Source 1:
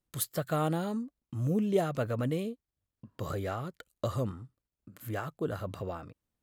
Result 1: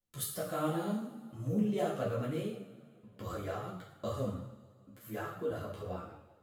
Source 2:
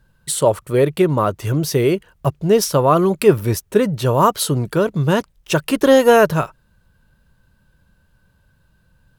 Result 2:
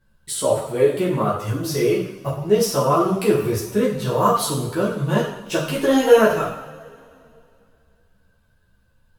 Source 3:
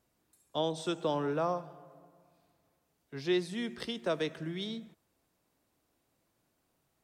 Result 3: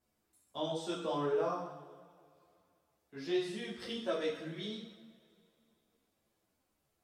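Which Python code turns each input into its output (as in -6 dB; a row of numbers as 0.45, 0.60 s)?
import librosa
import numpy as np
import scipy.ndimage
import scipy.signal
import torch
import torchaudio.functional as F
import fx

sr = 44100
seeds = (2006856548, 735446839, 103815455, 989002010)

y = fx.rev_double_slope(x, sr, seeds[0], early_s=0.69, late_s=2.7, knee_db=-19, drr_db=-2.5)
y = fx.ensemble(y, sr)
y = y * 10.0 ** (-4.5 / 20.0)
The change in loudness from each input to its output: -3.5, -3.0, -3.0 LU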